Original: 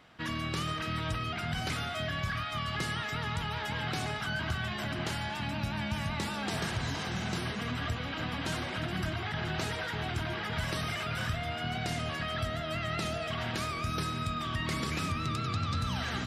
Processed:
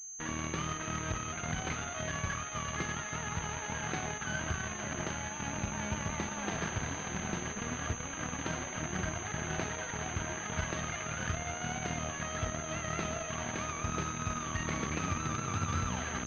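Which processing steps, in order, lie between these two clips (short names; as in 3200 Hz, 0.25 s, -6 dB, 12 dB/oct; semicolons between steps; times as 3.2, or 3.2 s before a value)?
bell 120 Hz -5 dB 0.28 oct; added harmonics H 4 -17 dB, 6 -16 dB, 7 -18 dB, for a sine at -21.5 dBFS; pulse-width modulation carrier 6300 Hz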